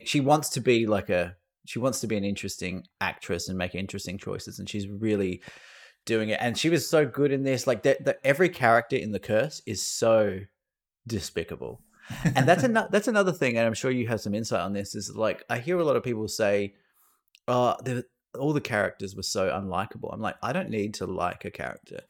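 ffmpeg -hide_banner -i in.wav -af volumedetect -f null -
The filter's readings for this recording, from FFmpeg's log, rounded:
mean_volume: -27.1 dB
max_volume: -5.0 dB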